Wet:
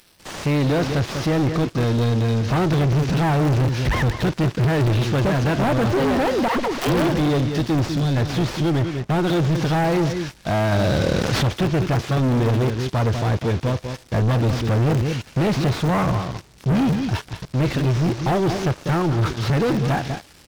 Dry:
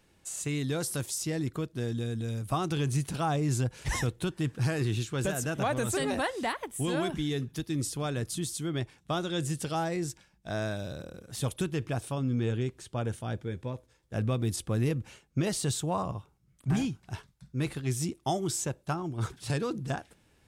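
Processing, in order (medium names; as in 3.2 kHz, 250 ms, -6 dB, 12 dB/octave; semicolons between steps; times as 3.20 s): one-bit delta coder 32 kbps, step -48 dBFS; 7.89–8.17 s: time-frequency box 280–3300 Hz -9 dB; 8.70–9.27 s: treble shelf 3.1 kHz -9 dB; in parallel at -11 dB: bit crusher 4-bit; 6.48–7.08 s: on the sum: phase dispersion lows, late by 89 ms, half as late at 430 Hz; on a send: delay 197 ms -12 dB; on the sum: waveshaping leveller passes 5; 10.72–11.49 s: level flattener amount 70%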